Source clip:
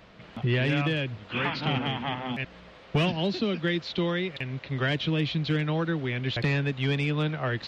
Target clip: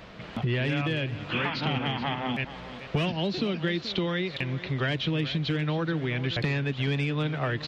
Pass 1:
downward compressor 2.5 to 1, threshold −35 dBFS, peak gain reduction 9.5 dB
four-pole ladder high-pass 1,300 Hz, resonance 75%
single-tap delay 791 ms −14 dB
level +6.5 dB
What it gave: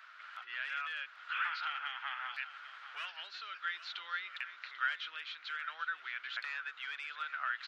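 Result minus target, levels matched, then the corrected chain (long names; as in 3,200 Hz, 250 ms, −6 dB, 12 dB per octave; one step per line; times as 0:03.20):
echo 361 ms late; 1,000 Hz band +5.5 dB
downward compressor 2.5 to 1, threshold −35 dBFS, peak gain reduction 9.5 dB
single-tap delay 430 ms −14 dB
level +6.5 dB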